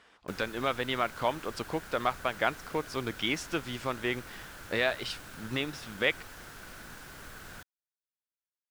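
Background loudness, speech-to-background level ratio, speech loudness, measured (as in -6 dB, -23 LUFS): -46.5 LUFS, 14.0 dB, -32.5 LUFS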